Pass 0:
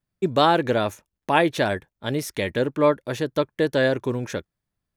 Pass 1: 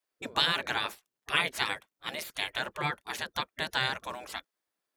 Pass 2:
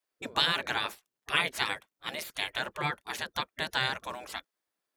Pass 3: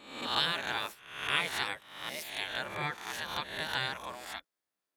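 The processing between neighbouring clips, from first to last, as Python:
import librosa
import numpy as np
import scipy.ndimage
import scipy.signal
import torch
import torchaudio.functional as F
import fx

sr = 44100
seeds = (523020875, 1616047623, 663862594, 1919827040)

y1 = fx.spec_gate(x, sr, threshold_db=-15, keep='weak')
y1 = y1 * librosa.db_to_amplitude(2.0)
y2 = y1
y3 = fx.spec_swells(y2, sr, rise_s=0.72)
y3 = y3 * librosa.db_to_amplitude(-5.5)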